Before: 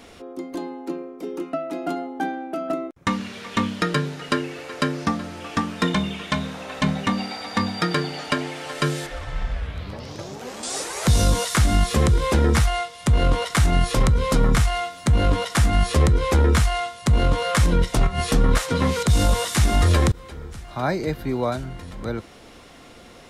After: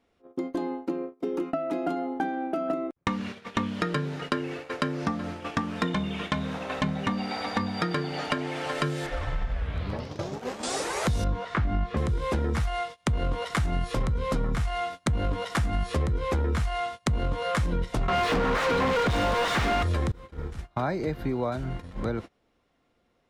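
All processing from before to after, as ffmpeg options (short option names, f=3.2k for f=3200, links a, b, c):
-filter_complex "[0:a]asettb=1/sr,asplit=3[a][b][c];[a]atrim=end=11.244[d];[b]atrim=start=11.24:end=11.97,asetpts=PTS-STARTPTS,afade=t=in:d=0.004:c=qsin,afade=t=out:st=0.726:d=0.004:c=qsin,lowpass=2.3k,asplit=2[e][f];[f]adelay=20,volume=-11dB[g];[e][g]amix=inputs=2:normalize=0,atrim=end_sample=32193[h];[c]atrim=start=11.966[i];[d][h]acrossfade=d=0.004:c1=hsin:c2=qsin[j];[j][i]acrossfade=d=0.004:c1=qsin:c2=hsin,asettb=1/sr,asplit=3[k][l][m];[k]atrim=end=18.084[n];[l]atrim=start=18.08:end=19.83,asetpts=PTS-STARTPTS,afade=t=in:d=0.004:c=qsin,afade=t=out:st=1.746:d=0.004:c=qsin,lowpass=f=3.9k:p=1,asplit=2[o][p];[p]highpass=f=720:p=1,volume=39dB,asoftclip=type=tanh:threshold=-6.5dB[q];[o][q]amix=inputs=2:normalize=0,lowpass=f=2.5k:p=1,volume=-6dB[r];[m]atrim=start=19.826[s];[n][r]acrossfade=d=0.004:c1=hsin:c2=qsin[t];[t][s]acrossfade=d=0.004:c1=qsin:c2=hsin,agate=range=-28dB:threshold=-34dB:ratio=16:detection=peak,highshelf=f=4.1k:g=-10.5,acompressor=threshold=-30dB:ratio=4,volume=4dB"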